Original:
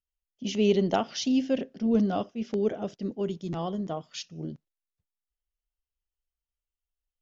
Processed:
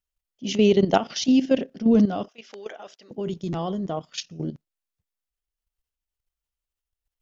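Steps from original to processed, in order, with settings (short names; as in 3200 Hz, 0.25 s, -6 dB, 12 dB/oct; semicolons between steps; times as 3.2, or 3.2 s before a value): 2.28–3.11 HPF 920 Hz 12 dB/oct; level quantiser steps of 12 dB; gain +8.5 dB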